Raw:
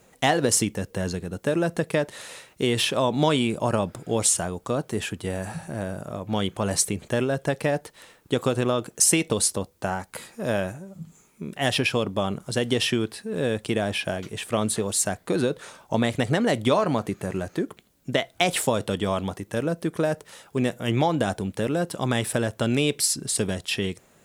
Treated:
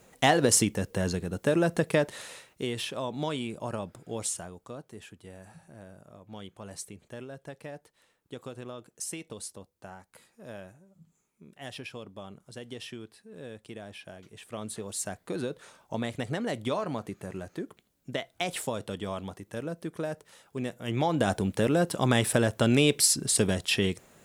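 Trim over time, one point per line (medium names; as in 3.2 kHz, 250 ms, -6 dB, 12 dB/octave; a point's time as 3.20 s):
2.10 s -1 dB
2.80 s -11 dB
4.24 s -11 dB
4.95 s -18 dB
14.08 s -18 dB
15.10 s -9.5 dB
20.79 s -9.5 dB
21.35 s +0.5 dB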